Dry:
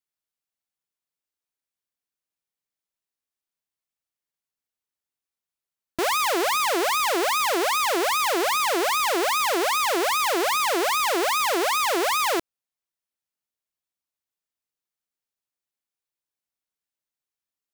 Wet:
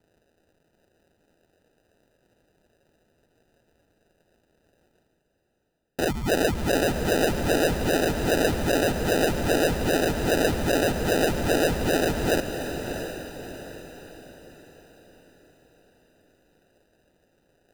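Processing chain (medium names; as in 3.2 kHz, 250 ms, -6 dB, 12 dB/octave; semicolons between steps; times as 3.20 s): resonant low shelf 350 Hz -8 dB, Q 1.5; reverse; upward compressor, threshold -28 dBFS; reverse; ring modulator 81 Hz; boxcar filter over 26 samples; sample-and-hold 40×; on a send: echo that smears into a reverb 673 ms, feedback 44%, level -7.5 dB; on the sum: trim +6.5 dB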